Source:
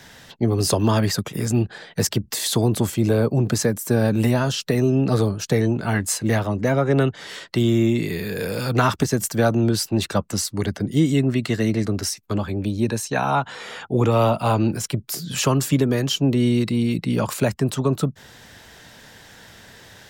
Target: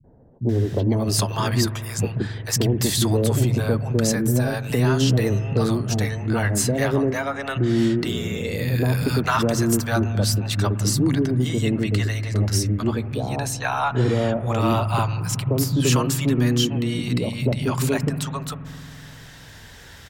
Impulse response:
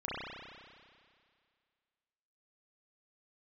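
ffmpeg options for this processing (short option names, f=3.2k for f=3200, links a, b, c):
-filter_complex "[0:a]acrossover=split=170|630[a][b][c];[b]adelay=40[d];[c]adelay=490[e];[a][d][e]amix=inputs=3:normalize=0,asplit=2[f][g];[g]asubboost=boost=11:cutoff=120[h];[1:a]atrim=start_sample=2205,asetrate=29106,aresample=44100[i];[h][i]afir=irnorm=-1:irlink=0,volume=-21dB[j];[f][j]amix=inputs=2:normalize=0,acontrast=45,volume=-5.5dB"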